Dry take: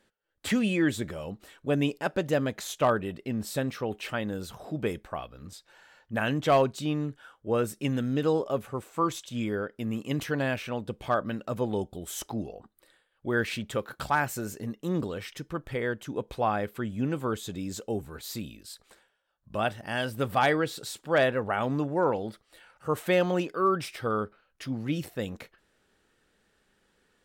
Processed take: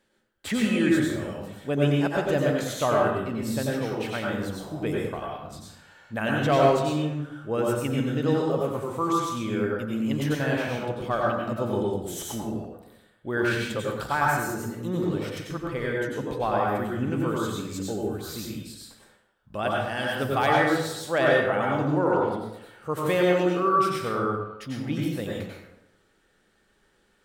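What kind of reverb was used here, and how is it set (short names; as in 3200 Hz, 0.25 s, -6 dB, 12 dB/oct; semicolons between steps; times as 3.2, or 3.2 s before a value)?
plate-style reverb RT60 0.89 s, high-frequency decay 0.6×, pre-delay 80 ms, DRR -3 dB; gain -1.5 dB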